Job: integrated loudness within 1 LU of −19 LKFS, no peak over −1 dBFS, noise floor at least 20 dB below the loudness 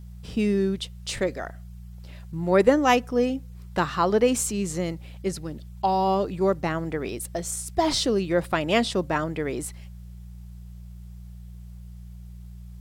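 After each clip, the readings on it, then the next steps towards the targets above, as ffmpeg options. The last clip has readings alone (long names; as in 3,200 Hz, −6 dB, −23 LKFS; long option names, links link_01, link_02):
mains hum 60 Hz; hum harmonics up to 180 Hz; level of the hum −38 dBFS; integrated loudness −25.0 LKFS; sample peak −5.5 dBFS; target loudness −19.0 LKFS
→ -af "bandreject=frequency=60:width_type=h:width=4,bandreject=frequency=120:width_type=h:width=4,bandreject=frequency=180:width_type=h:width=4"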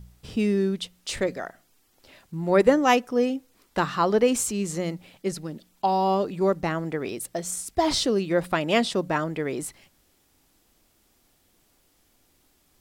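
mains hum none found; integrated loudness −25.0 LKFS; sample peak −5.5 dBFS; target loudness −19.0 LKFS
→ -af "volume=6dB,alimiter=limit=-1dB:level=0:latency=1"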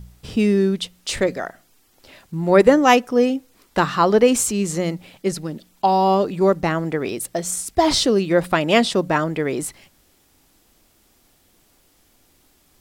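integrated loudness −19.0 LKFS; sample peak −1.0 dBFS; background noise floor −59 dBFS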